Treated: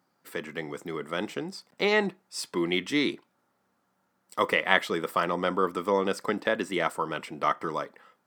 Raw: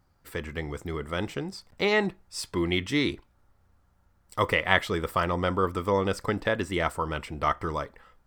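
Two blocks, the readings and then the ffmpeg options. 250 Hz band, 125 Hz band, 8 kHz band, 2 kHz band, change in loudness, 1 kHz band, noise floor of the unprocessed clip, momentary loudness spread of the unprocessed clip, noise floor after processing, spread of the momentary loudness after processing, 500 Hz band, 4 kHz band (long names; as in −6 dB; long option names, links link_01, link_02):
−0.5 dB, −8.0 dB, 0.0 dB, 0.0 dB, 0.0 dB, 0.0 dB, −66 dBFS, 12 LU, −74 dBFS, 12 LU, 0.0 dB, 0.0 dB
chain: -af "highpass=frequency=180:width=0.5412,highpass=frequency=180:width=1.3066"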